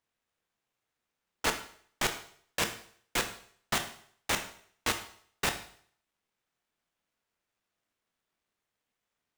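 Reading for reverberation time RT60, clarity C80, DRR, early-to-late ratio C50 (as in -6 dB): 0.55 s, 13.5 dB, 6.0 dB, 10.5 dB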